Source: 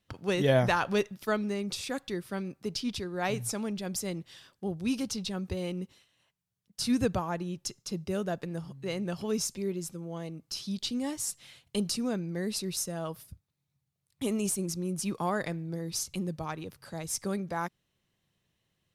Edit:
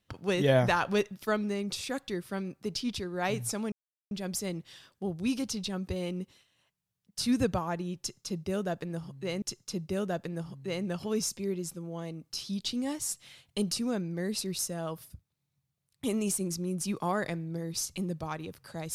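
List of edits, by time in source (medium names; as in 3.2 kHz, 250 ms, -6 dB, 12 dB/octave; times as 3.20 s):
3.72 s: insert silence 0.39 s
7.60–9.03 s: loop, 2 plays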